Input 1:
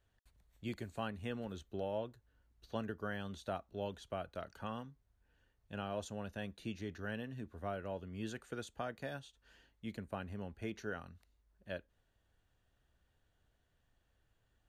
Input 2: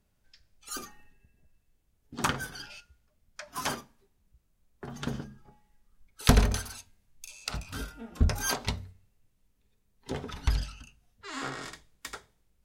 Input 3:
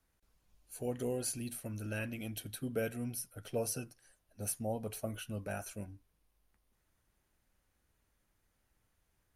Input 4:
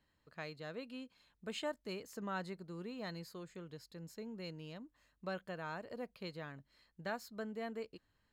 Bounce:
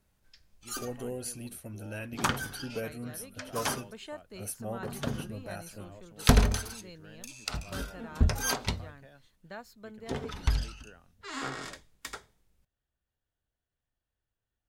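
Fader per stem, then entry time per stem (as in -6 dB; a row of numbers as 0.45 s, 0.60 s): -12.0 dB, 0.0 dB, -1.0 dB, -3.0 dB; 0.00 s, 0.00 s, 0.00 s, 2.45 s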